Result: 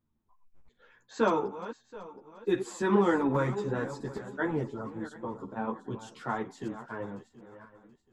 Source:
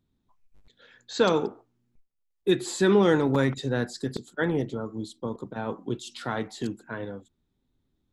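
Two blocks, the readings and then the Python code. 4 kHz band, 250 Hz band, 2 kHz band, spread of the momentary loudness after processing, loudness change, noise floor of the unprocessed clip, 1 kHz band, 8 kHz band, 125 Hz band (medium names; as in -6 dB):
-13.0 dB, -4.5 dB, -4.5 dB, 18 LU, -4.5 dB, -76 dBFS, 0.0 dB, -10.0 dB, -5.5 dB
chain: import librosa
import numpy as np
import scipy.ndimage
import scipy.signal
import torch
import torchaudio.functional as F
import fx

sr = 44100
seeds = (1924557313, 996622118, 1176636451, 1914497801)

y = fx.reverse_delay_fb(x, sr, ms=364, feedback_pct=51, wet_db=-13.5)
y = fx.graphic_eq_15(y, sr, hz=(1000, 4000, 10000), db=(7, -11, -9))
y = fx.ensemble(y, sr)
y = y * librosa.db_to_amplitude(-2.0)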